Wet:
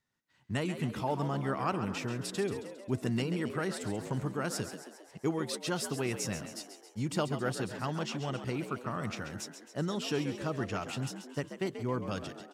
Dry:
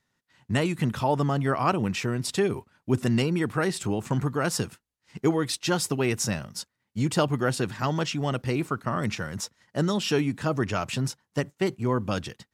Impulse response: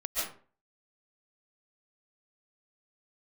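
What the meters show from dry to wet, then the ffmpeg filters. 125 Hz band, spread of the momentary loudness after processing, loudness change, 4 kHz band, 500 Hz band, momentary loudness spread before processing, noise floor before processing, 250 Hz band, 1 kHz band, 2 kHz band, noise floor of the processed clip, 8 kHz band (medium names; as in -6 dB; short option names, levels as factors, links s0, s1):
-8.5 dB, 7 LU, -8.0 dB, -8.0 dB, -7.5 dB, 7 LU, -81 dBFS, -7.5 dB, -8.0 dB, -8.0 dB, -58 dBFS, -8.0 dB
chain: -filter_complex "[0:a]asplit=8[s0][s1][s2][s3][s4][s5][s6][s7];[s1]adelay=135,afreqshift=62,volume=0.316[s8];[s2]adelay=270,afreqshift=124,volume=0.18[s9];[s3]adelay=405,afreqshift=186,volume=0.102[s10];[s4]adelay=540,afreqshift=248,volume=0.0589[s11];[s5]adelay=675,afreqshift=310,volume=0.0335[s12];[s6]adelay=810,afreqshift=372,volume=0.0191[s13];[s7]adelay=945,afreqshift=434,volume=0.0108[s14];[s0][s8][s9][s10][s11][s12][s13][s14]amix=inputs=8:normalize=0,volume=0.376"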